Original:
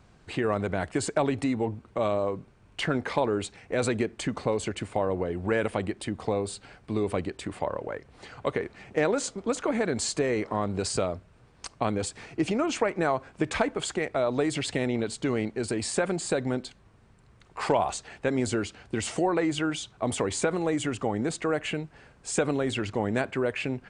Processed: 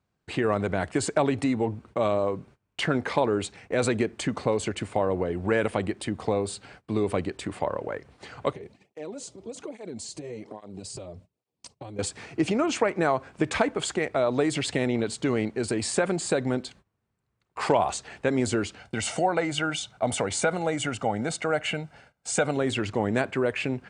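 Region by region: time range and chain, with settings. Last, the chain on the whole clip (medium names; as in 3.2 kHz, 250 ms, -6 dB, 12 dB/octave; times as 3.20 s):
8.53–11.99 s: peaking EQ 1.5 kHz -13 dB 1.2 oct + compression 3:1, threshold -36 dBFS + cancelling through-zero flanger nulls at 1.2 Hz, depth 4.8 ms
18.79–22.57 s: bass shelf 110 Hz -8.5 dB + comb 1.4 ms, depth 53%
whole clip: gate -51 dBFS, range -22 dB; high-pass 62 Hz; trim +2 dB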